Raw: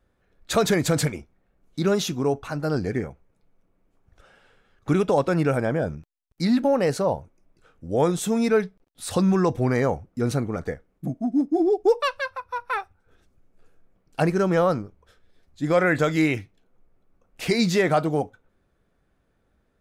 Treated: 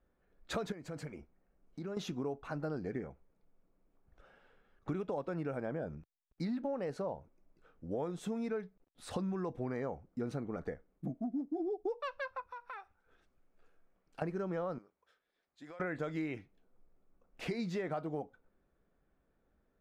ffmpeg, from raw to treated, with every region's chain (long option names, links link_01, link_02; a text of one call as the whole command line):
ffmpeg -i in.wav -filter_complex "[0:a]asettb=1/sr,asplit=3[link_01][link_02][link_03];[link_01]atrim=end=0.724[link_04];[link_02]atrim=start=0.72:end=1.97,asetpts=PTS-STARTPTS,afade=type=in:duration=0.004:curve=qsin,afade=type=out:start_time=1.246:duration=0.004:curve=qsin,bandreject=frequency=3600:width=6.1,acompressor=threshold=-37dB:ratio=2.5:attack=3.2:release=140:knee=1:detection=peak[link_05];[link_03]atrim=start=1.966[link_06];[link_04][link_05]acrossfade=duration=0.004:curve1=hsin:curve2=qsin[link_07];[link_07][link_06]acrossfade=duration=0.004:curve1=qsin:curve2=hsin,asettb=1/sr,asplit=3[link_08][link_09][link_10];[link_08]atrim=end=12.474[link_11];[link_09]atrim=start=12.47:end=14.22,asetpts=PTS-STARTPTS,afade=type=in:duration=0.004:curve=qsin,afade=type=out:start_time=1.746:duration=0.004:curve=qsin,tiltshelf=frequency=700:gain=-5.5,acompressor=threshold=-39dB:ratio=3:attack=3.2:release=140:knee=1:detection=peak[link_12];[link_10]atrim=start=14.216[link_13];[link_11][link_12]acrossfade=duration=0.004:curve1=hsin:curve2=qsin[link_14];[link_14][link_13]acrossfade=duration=0.004:curve1=qsin:curve2=hsin,asettb=1/sr,asplit=3[link_15][link_16][link_17];[link_15]atrim=end=14.784[link_18];[link_16]atrim=start=14.78:end=15.8,asetpts=PTS-STARTPTS,afade=type=in:duration=0.004:curve=qsin,afade=type=out:start_time=1.016:duration=0.004:curve=qsin,highpass=frequency=1400:poles=1,acompressor=threshold=-39dB:ratio=16:attack=3.2:release=140:knee=1:detection=peak[link_19];[link_17]atrim=start=15.796[link_20];[link_18][link_19]acrossfade=duration=0.004:curve1=hsin:curve2=qsin[link_21];[link_21][link_20]acrossfade=duration=0.004:curve1=qsin:curve2=hsin,lowpass=frequency=1700:poles=1,equalizer=frequency=100:width=1.9:gain=-8.5,acompressor=threshold=-29dB:ratio=5,volume=-6dB" out.wav